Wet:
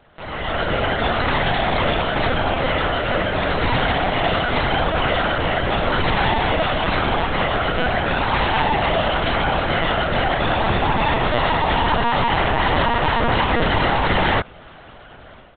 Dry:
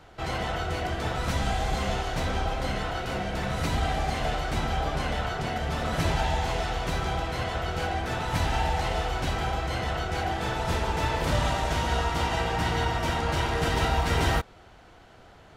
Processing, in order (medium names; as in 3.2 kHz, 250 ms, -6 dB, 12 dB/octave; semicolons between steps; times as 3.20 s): high-pass 190 Hz 6 dB/octave; comb 2 ms, depth 35%; peak limiter -20.5 dBFS, peak gain reduction 5.5 dB; level rider gain up to 12 dB; LPC vocoder at 8 kHz pitch kept